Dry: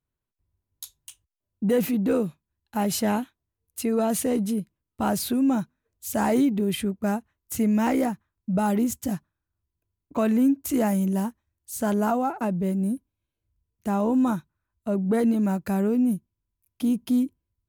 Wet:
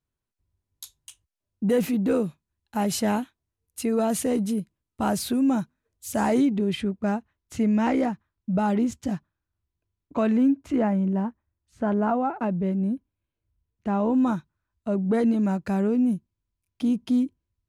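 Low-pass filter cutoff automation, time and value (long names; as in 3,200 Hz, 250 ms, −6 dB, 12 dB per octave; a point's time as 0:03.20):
0:06.09 11,000 Hz
0:06.81 4,800 Hz
0:10.31 4,800 Hz
0:10.97 1,800 Hz
0:11.91 1,800 Hz
0:12.43 3,200 Hz
0:13.94 3,200 Hz
0:14.37 6,400 Hz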